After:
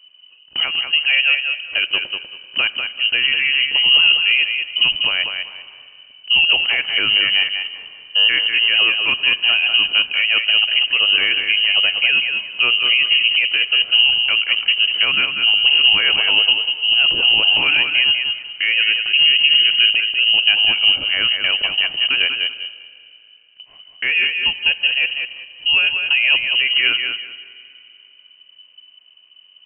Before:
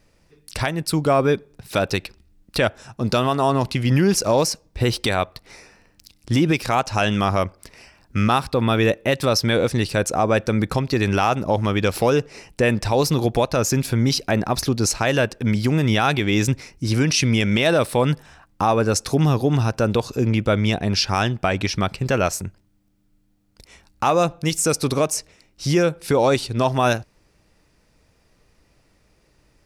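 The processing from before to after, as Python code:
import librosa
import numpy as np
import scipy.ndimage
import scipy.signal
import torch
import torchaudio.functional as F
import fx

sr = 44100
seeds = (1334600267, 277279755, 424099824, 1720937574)

p1 = fx.tilt_eq(x, sr, slope=-2.5)
p2 = p1 + fx.echo_feedback(p1, sr, ms=194, feedback_pct=22, wet_db=-6, dry=0)
p3 = fx.rev_schroeder(p2, sr, rt60_s=2.8, comb_ms=30, drr_db=17.0)
p4 = fx.freq_invert(p3, sr, carrier_hz=3000)
y = p4 * librosa.db_to_amplitude(-2.5)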